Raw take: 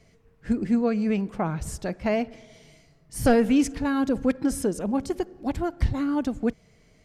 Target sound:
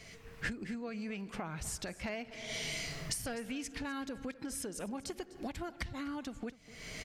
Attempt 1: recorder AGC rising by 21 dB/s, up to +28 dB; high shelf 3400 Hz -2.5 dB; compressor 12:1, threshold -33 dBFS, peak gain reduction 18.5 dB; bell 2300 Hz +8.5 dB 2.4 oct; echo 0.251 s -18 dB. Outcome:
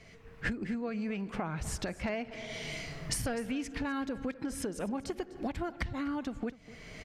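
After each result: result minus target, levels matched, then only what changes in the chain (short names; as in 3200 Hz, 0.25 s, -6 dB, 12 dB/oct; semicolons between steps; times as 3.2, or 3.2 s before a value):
compressor: peak gain reduction -6 dB; 8000 Hz band -4.0 dB
change: compressor 12:1, threshold -39 dBFS, peak gain reduction 24 dB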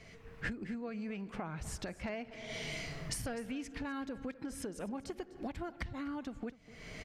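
8000 Hz band -4.5 dB
change: high shelf 3400 Hz +9 dB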